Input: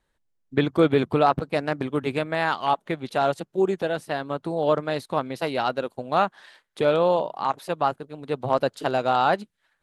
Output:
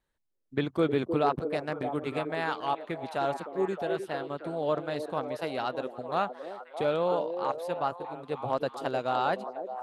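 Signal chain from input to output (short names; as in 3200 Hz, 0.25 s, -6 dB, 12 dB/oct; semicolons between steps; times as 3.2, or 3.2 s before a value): delay with a stepping band-pass 0.309 s, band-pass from 390 Hz, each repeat 0.7 oct, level -4.5 dB; gain -7.5 dB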